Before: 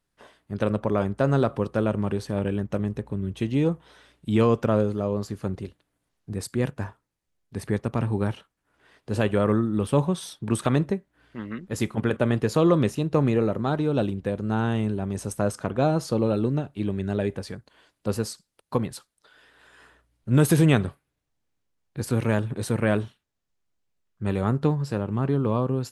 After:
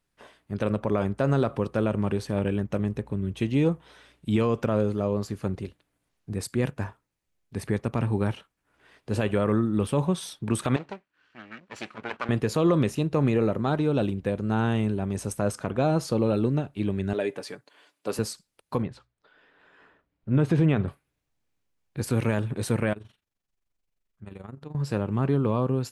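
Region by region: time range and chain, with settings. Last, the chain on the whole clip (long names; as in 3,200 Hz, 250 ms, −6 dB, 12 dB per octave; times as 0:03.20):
0:10.76–0:12.29: lower of the sound and its delayed copy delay 0.68 ms + high-pass filter 1,100 Hz 6 dB per octave + high-frequency loss of the air 110 metres
0:17.13–0:18.19: high-pass filter 300 Hz + comb filter 6.9 ms, depth 37%
0:18.82–0:20.88: head-to-tape spacing loss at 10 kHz 26 dB + mains-hum notches 60/120 Hz
0:22.93–0:24.75: downward compressor 2.5 to 1, threshold −41 dBFS + amplitude modulation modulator 23 Hz, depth 60%
whole clip: parametric band 2,400 Hz +3 dB 0.42 octaves; brickwall limiter −13 dBFS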